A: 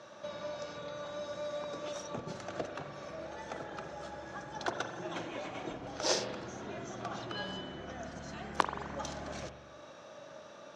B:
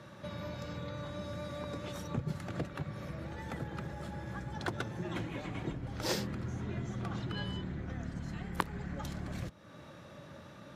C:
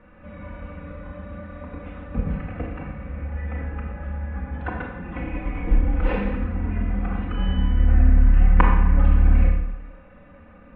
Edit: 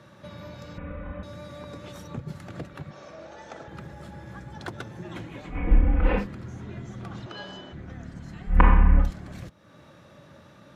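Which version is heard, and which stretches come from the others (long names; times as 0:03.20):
B
0:00.78–0:01.23: punch in from C
0:02.91–0:03.68: punch in from A
0:05.53–0:06.22: punch in from C, crossfade 0.10 s
0:07.26–0:07.73: punch in from A
0:08.54–0:09.04: punch in from C, crossfade 0.16 s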